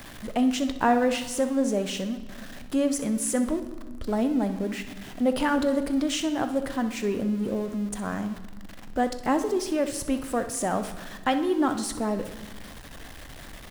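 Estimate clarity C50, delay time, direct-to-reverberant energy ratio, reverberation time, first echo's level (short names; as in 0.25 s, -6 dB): 9.5 dB, 63 ms, 8.0 dB, 1.3 s, -13.5 dB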